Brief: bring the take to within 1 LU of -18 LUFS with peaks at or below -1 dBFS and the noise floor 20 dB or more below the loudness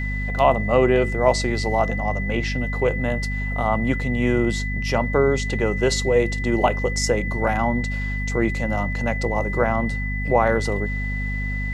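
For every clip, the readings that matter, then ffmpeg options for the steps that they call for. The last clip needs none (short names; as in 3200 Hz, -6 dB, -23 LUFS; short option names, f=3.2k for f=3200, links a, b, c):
hum 50 Hz; harmonics up to 250 Hz; hum level -24 dBFS; steady tone 2000 Hz; tone level -29 dBFS; loudness -22.0 LUFS; peak -3.5 dBFS; loudness target -18.0 LUFS
-> -af "bandreject=f=50:t=h:w=6,bandreject=f=100:t=h:w=6,bandreject=f=150:t=h:w=6,bandreject=f=200:t=h:w=6,bandreject=f=250:t=h:w=6"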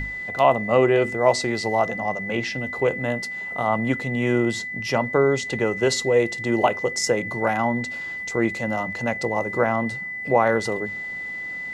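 hum none; steady tone 2000 Hz; tone level -29 dBFS
-> -af "bandreject=f=2k:w=30"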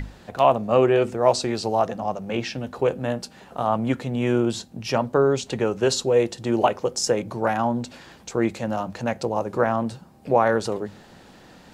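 steady tone none; loudness -23.5 LUFS; peak -4.0 dBFS; loudness target -18.0 LUFS
-> -af "volume=5.5dB,alimiter=limit=-1dB:level=0:latency=1"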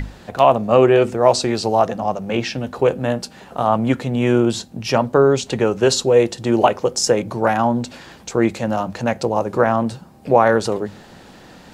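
loudness -18.0 LUFS; peak -1.0 dBFS; noise floor -44 dBFS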